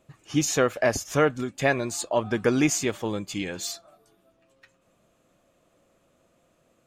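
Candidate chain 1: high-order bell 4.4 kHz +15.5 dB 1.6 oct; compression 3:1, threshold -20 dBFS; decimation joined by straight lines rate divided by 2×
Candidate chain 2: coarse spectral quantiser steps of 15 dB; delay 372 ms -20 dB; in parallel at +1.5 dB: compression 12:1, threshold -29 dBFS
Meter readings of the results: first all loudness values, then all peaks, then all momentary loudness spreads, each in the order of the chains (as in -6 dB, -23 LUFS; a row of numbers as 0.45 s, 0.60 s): -24.0 LUFS, -23.0 LUFS; -9.0 dBFS, -7.0 dBFS; 5 LU, 7 LU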